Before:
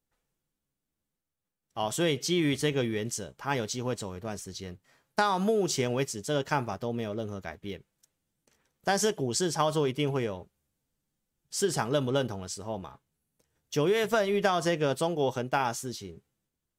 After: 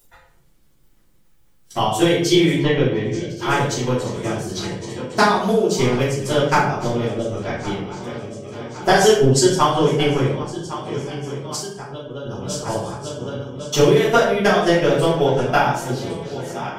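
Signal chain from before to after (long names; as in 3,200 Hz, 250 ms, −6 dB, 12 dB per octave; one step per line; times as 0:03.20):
feedback delay that plays each chunk backwards 556 ms, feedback 66%, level −13 dB
0:08.93–0:09.55: comb filter 7.5 ms, depth 94%
in parallel at +2 dB: upward compression, threshold −27 dBFS
on the sum: transient designer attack +9 dB, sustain −10 dB
0:11.55–0:12.25: downward compressor 2.5 to 1, threshold −37 dBFS, peak gain reduction 19 dB
noise reduction from a noise print of the clip's start 13 dB
0:02.53–0:03.30: high-frequency loss of the air 190 metres
convolution reverb RT60 0.65 s, pre-delay 3 ms, DRR −10.5 dB
level −10.5 dB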